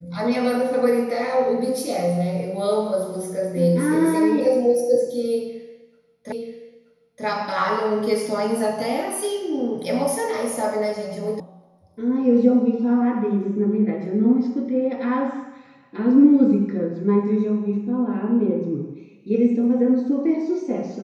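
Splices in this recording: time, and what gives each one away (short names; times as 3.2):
6.32 repeat of the last 0.93 s
11.4 sound cut off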